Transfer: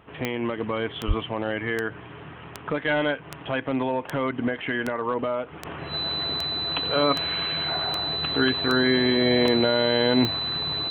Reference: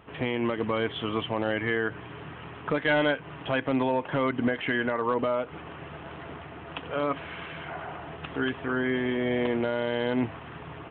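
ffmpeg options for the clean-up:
-filter_complex "[0:a]adeclick=t=4,bandreject=f=4k:w=30,asplit=3[a][b][c];[a]afade=t=out:st=1.07:d=0.02[d];[b]highpass=f=140:w=0.5412,highpass=f=140:w=1.3066,afade=t=in:st=1.07:d=0.02,afade=t=out:st=1.19:d=0.02[e];[c]afade=t=in:st=1.19:d=0.02[f];[d][e][f]amix=inputs=3:normalize=0,asetnsamples=n=441:p=0,asendcmd='5.65 volume volume -6dB',volume=0dB"

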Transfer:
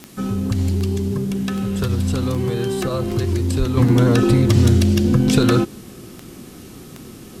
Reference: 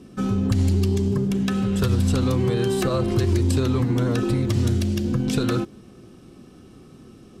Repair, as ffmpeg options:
-filter_complex "[0:a]adeclick=t=4,asplit=3[a][b][c];[a]afade=t=out:st=3.58:d=0.02[d];[b]highpass=f=140:w=0.5412,highpass=f=140:w=1.3066,afade=t=in:st=3.58:d=0.02,afade=t=out:st=3.7:d=0.02[e];[c]afade=t=in:st=3.7:d=0.02[f];[d][e][f]amix=inputs=3:normalize=0,agate=range=-21dB:threshold=-30dB,asetnsamples=n=441:p=0,asendcmd='3.77 volume volume -7.5dB',volume=0dB"

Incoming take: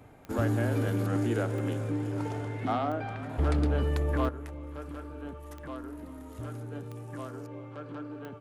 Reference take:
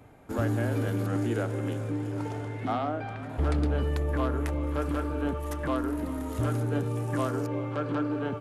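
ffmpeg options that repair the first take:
-af "adeclick=t=4,asetnsamples=n=441:p=0,asendcmd='4.29 volume volume 11dB',volume=0dB"

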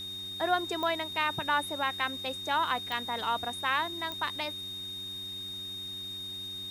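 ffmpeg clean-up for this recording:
-af "adeclick=t=4,bandreject=f=94.3:t=h:w=4,bandreject=f=188.6:t=h:w=4,bandreject=f=282.9:t=h:w=4,bandreject=f=377.2:t=h:w=4,bandreject=f=3.7k:w=30,afwtdn=0.002"

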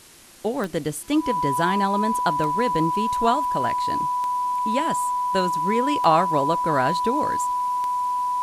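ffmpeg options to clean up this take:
-af "adeclick=t=4,bandreject=f=990:w=30,afwtdn=0.0045"

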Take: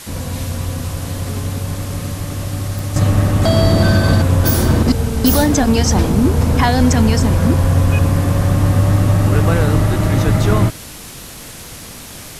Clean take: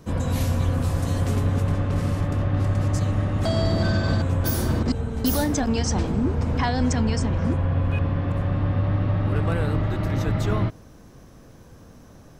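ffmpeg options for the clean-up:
-filter_complex "[0:a]adeclick=t=4,asplit=3[a][b][c];[a]afade=t=out:st=7.61:d=0.02[d];[b]highpass=f=140:w=0.5412,highpass=f=140:w=1.3066,afade=t=in:st=7.61:d=0.02,afade=t=out:st=7.73:d=0.02[e];[c]afade=t=in:st=7.73:d=0.02[f];[d][e][f]amix=inputs=3:normalize=0,afwtdn=0.022,asetnsamples=n=441:p=0,asendcmd='2.96 volume volume -9.5dB',volume=0dB"

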